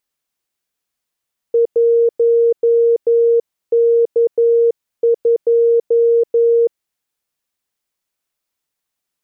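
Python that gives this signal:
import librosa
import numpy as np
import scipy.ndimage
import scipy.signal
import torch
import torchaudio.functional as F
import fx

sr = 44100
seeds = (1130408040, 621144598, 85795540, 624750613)

y = fx.morse(sr, text='1K2', wpm=11, hz=466.0, level_db=-9.0)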